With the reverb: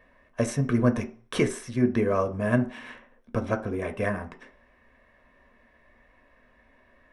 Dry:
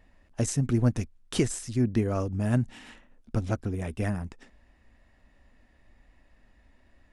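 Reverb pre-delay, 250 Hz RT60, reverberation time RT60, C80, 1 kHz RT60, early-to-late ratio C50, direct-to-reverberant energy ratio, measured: 3 ms, 0.35 s, 0.45 s, 20.0 dB, 0.45 s, 15.5 dB, 6.5 dB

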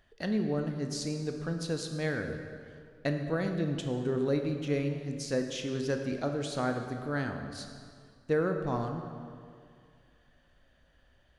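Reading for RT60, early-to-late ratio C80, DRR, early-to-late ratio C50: 2.2 s, 7.0 dB, 4.5 dB, 6.0 dB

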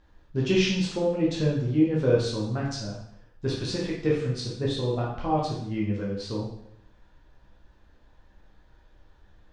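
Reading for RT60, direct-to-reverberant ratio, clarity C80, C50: 0.70 s, -4.5 dB, 6.5 dB, 2.5 dB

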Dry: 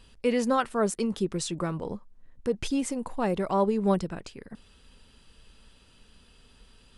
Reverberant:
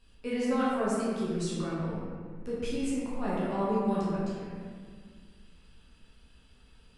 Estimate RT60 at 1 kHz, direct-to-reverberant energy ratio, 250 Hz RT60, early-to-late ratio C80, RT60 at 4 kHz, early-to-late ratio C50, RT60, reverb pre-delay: 1.7 s, -9.5 dB, 2.5 s, -0.5 dB, 1.2 s, -2.5 dB, 1.8 s, 11 ms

